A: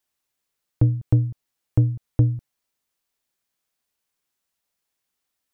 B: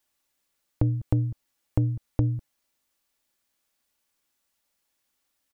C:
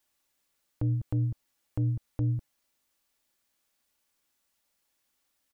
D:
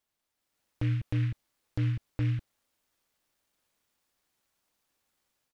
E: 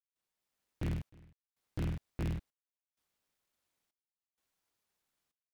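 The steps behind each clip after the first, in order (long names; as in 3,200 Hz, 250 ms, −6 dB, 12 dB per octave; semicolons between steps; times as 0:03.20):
comb filter 3.5 ms, depth 31%; brickwall limiter −11.5 dBFS, peak gain reduction 3 dB; downward compressor, threshold −22 dBFS, peak gain reduction 6 dB; level +3 dB
brickwall limiter −20.5 dBFS, peak gain reduction 11 dB
automatic gain control gain up to 6.5 dB; short delay modulated by noise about 2,000 Hz, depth 0.093 ms; level −7 dB
sub-harmonics by changed cycles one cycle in 3, inverted; gate pattern ".xxxxxx.." 96 BPM −24 dB; level −6.5 dB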